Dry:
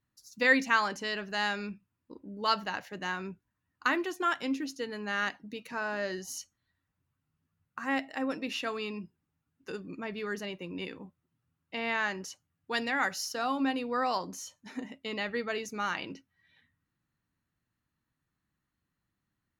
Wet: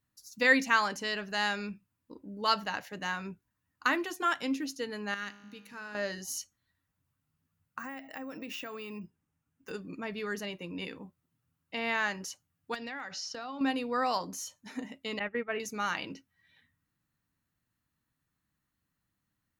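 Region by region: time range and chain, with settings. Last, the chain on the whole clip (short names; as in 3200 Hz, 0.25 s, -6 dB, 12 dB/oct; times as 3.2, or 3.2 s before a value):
5.14–5.95 bell 680 Hz -9.5 dB 1 oct + resonator 51 Hz, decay 1.5 s
7.79–9.71 bell 4200 Hz -8 dB 0.47 oct + compressor 10:1, threshold -37 dBFS + careless resampling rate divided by 2×, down filtered, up hold
12.74–13.61 LPF 5600 Hz 24 dB/oct + compressor 16:1, threshold -36 dBFS + overloaded stage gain 31 dB
15.19–15.6 gate -36 dBFS, range -15 dB + steep low-pass 2700 Hz
whole clip: high shelf 7600 Hz +6.5 dB; notch 370 Hz, Q 12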